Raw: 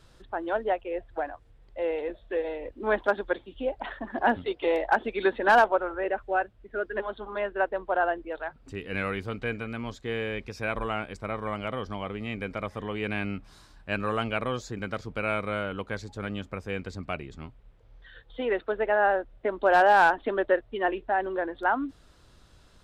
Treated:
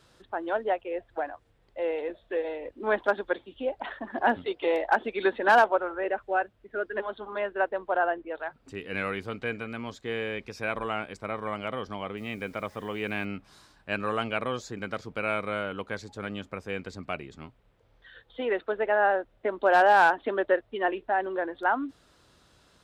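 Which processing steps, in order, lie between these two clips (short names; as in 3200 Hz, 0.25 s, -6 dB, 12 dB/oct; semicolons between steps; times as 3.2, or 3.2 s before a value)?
7.98–8.39 LPF 3400 Hz; 12.17–13.25 requantised 10-bit, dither none; HPF 170 Hz 6 dB/oct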